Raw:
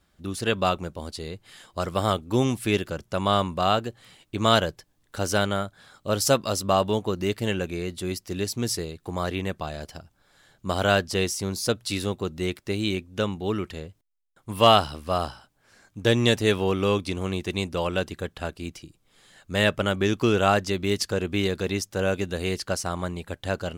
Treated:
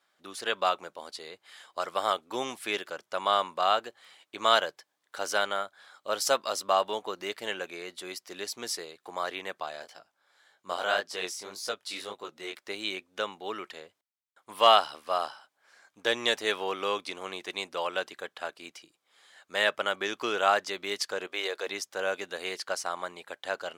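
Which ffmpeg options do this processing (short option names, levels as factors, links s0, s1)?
-filter_complex "[0:a]asplit=3[s0][s1][s2];[s0]afade=t=out:st=9.82:d=0.02[s3];[s1]flanger=delay=18:depth=6.7:speed=1.8,afade=t=in:st=9.82:d=0.02,afade=t=out:st=12.54:d=0.02[s4];[s2]afade=t=in:st=12.54:d=0.02[s5];[s3][s4][s5]amix=inputs=3:normalize=0,asettb=1/sr,asplit=3[s6][s7][s8];[s6]atrim=end=21.274[s9];[s7]atrim=start=21.27:end=21.67,asetpts=PTS-STARTPTS,afade=t=in:d=0.004:c=qsin,afade=t=out:st=0.396:d=0.004:c=qsin,lowshelf=f=310:t=q:w=1.5:g=-12.5[s10];[s8]atrim=start=21.666[s11];[s9][s10]acrossfade=d=0.004:c1=hsin:c2=qsin[s12];[s12][s11]acrossfade=d=0.004:c1=qsin:c2=hsin,highpass=690,highshelf=f=5600:g=-8,bandreject=f=2700:w=22"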